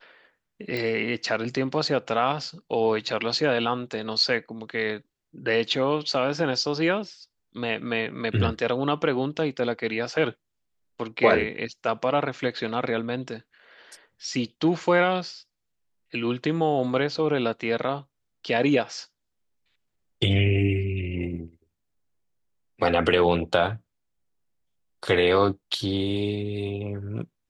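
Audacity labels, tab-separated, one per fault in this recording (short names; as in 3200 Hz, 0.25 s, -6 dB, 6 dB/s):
0.770000	0.770000	pop -17 dBFS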